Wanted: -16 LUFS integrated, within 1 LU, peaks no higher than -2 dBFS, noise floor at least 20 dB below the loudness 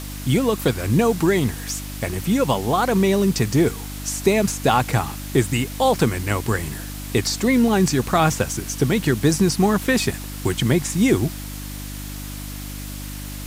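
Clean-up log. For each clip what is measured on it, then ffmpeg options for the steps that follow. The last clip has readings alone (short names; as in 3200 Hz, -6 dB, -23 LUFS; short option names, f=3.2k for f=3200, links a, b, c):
hum 50 Hz; harmonics up to 300 Hz; hum level -31 dBFS; noise floor -32 dBFS; noise floor target -41 dBFS; loudness -20.5 LUFS; peak -4.0 dBFS; loudness target -16.0 LUFS
-> -af "bandreject=f=50:t=h:w=4,bandreject=f=100:t=h:w=4,bandreject=f=150:t=h:w=4,bandreject=f=200:t=h:w=4,bandreject=f=250:t=h:w=4,bandreject=f=300:t=h:w=4"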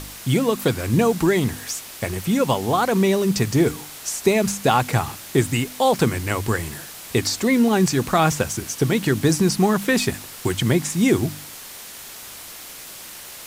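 hum none; noise floor -38 dBFS; noise floor target -41 dBFS
-> -af "afftdn=nr=6:nf=-38"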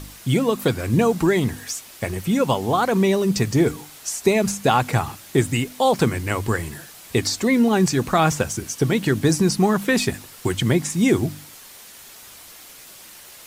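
noise floor -44 dBFS; loudness -21.0 LUFS; peak -4.0 dBFS; loudness target -16.0 LUFS
-> -af "volume=5dB,alimiter=limit=-2dB:level=0:latency=1"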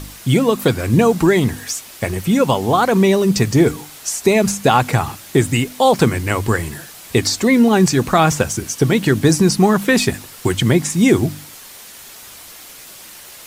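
loudness -16.0 LUFS; peak -2.0 dBFS; noise floor -39 dBFS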